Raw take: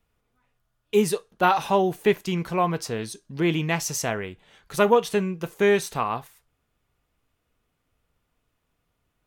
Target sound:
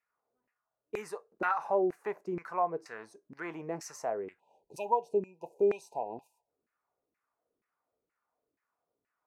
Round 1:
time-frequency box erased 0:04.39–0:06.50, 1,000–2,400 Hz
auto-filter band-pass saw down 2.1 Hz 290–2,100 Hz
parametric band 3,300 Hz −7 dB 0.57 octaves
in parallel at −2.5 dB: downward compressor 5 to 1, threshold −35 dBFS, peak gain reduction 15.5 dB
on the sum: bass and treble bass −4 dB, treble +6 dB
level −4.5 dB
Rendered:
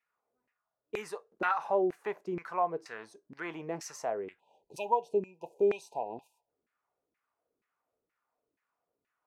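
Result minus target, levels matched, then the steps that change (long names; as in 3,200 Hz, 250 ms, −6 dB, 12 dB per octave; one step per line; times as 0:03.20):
4,000 Hz band +4.5 dB
change: parametric band 3,300 Hz −17 dB 0.57 octaves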